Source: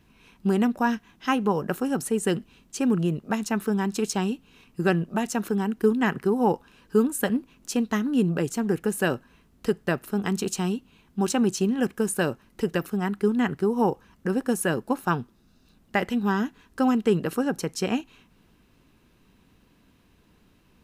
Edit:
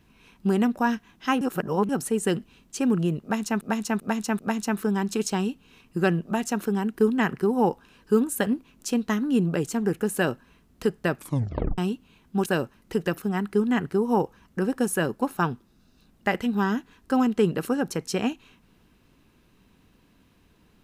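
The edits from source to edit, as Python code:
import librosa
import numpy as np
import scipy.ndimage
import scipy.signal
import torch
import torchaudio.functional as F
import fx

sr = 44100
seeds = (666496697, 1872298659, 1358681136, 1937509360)

y = fx.edit(x, sr, fx.reverse_span(start_s=1.41, length_s=0.48),
    fx.repeat(start_s=3.22, length_s=0.39, count=4),
    fx.tape_stop(start_s=9.98, length_s=0.63),
    fx.cut(start_s=11.29, length_s=0.85), tone=tone)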